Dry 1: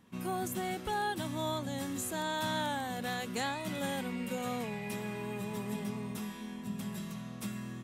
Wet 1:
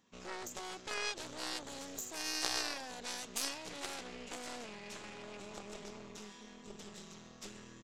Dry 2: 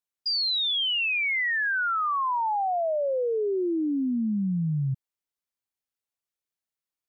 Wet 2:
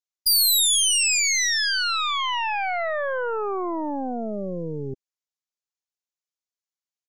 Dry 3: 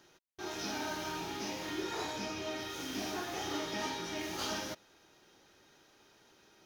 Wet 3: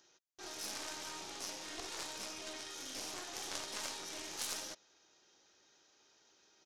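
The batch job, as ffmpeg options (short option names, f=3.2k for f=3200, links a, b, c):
-af "aresample=16000,aresample=44100,aeval=exprs='0.0794*(cos(1*acos(clip(val(0)/0.0794,-1,1)))-cos(1*PI/2))+0.0251*(cos(2*acos(clip(val(0)/0.0794,-1,1)))-cos(2*PI/2))+0.0355*(cos(3*acos(clip(val(0)/0.0794,-1,1)))-cos(3*PI/2))+0.00178*(cos(6*acos(clip(val(0)/0.0794,-1,1)))-cos(6*PI/2))':c=same,bass=f=250:g=-8,treble=f=4k:g=10,volume=1.5dB"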